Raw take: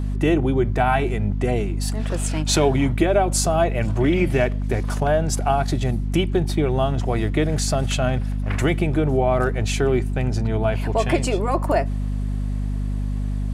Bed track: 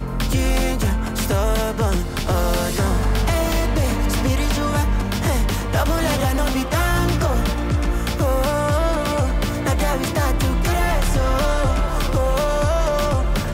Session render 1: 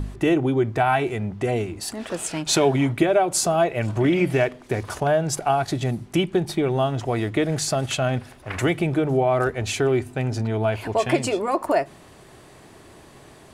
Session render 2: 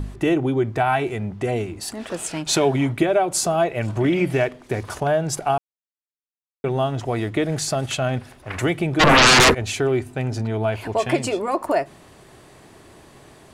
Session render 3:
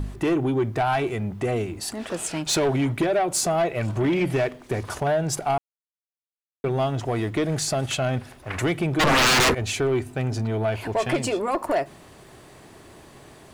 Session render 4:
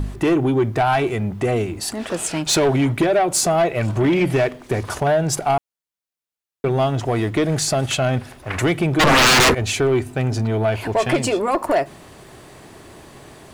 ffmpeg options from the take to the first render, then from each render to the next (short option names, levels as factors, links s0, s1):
-af "bandreject=f=50:t=h:w=4,bandreject=f=100:t=h:w=4,bandreject=f=150:t=h:w=4,bandreject=f=200:t=h:w=4,bandreject=f=250:t=h:w=4"
-filter_complex "[0:a]asplit=3[s0][s1][s2];[s0]afade=t=out:st=8.99:d=0.02[s3];[s1]aeval=exprs='0.355*sin(PI/2*8.91*val(0)/0.355)':c=same,afade=t=in:st=8.99:d=0.02,afade=t=out:st=9.53:d=0.02[s4];[s2]afade=t=in:st=9.53:d=0.02[s5];[s3][s4][s5]amix=inputs=3:normalize=0,asplit=3[s6][s7][s8];[s6]atrim=end=5.58,asetpts=PTS-STARTPTS,afade=t=out:st=5.576:d=0.004:c=hsin[s9];[s7]atrim=start=5.58:end=6.64,asetpts=PTS-STARTPTS,volume=0[s10];[s8]atrim=start=6.64,asetpts=PTS-STARTPTS,afade=t=in:d=0.004:c=hsin[s11];[s9][s10][s11]concat=n=3:v=0:a=1"
-af "asoftclip=type=tanh:threshold=0.158,acrusher=bits=10:mix=0:aa=0.000001"
-af "volume=1.78"